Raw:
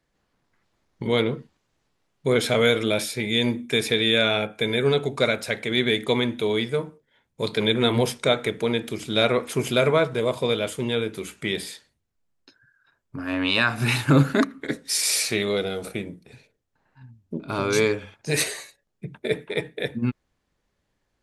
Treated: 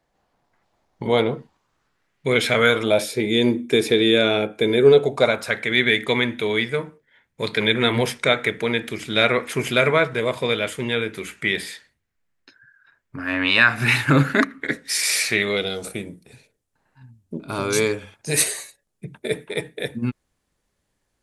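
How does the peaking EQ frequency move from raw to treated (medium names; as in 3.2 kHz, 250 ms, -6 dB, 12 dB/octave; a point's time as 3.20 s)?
peaking EQ +10 dB 0.97 oct
1.37 s 750 Hz
2.39 s 2.6 kHz
3.24 s 350 Hz
4.81 s 350 Hz
5.71 s 1.9 kHz
15.51 s 1.9 kHz
15.93 s 9.7 kHz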